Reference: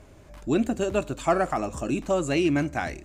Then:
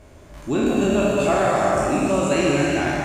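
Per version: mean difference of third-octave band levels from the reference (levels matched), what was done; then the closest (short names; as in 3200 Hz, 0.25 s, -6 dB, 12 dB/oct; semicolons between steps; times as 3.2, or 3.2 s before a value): 6.5 dB: spectral trails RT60 1.36 s; in parallel at -1.5 dB: limiter -19 dBFS, peak gain reduction 10.5 dB; on the sum: non-linear reverb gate 0.46 s flat, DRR -1.5 dB; gain -4.5 dB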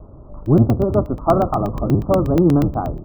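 9.0 dB: octaver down 1 oct, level +3 dB; steep low-pass 1300 Hz 96 dB/oct; crackling interface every 0.12 s, samples 64, zero, from 0.46; gain +7 dB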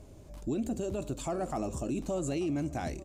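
4.5 dB: bell 1700 Hz -12 dB 1.8 oct; limiter -25.5 dBFS, peak gain reduction 11.5 dB; on a send: echo 0.887 s -18.5 dB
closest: third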